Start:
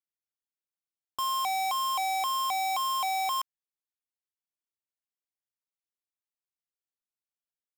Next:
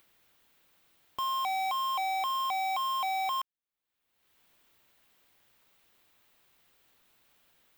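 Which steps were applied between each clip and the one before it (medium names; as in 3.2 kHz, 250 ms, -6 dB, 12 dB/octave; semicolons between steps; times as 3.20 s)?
high-order bell 7.9 kHz -8.5 dB; upward compressor, threshold -40 dBFS; trim -1.5 dB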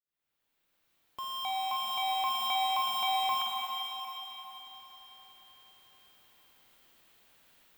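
fade-in on the opening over 2.48 s; band-passed feedback delay 378 ms, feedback 55%, band-pass 2.9 kHz, level -10.5 dB; reverberation RT60 4.1 s, pre-delay 39 ms, DRR -1 dB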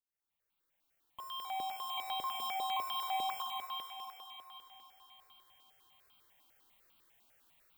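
stepped phaser 10 Hz 490–1800 Hz; trim -4 dB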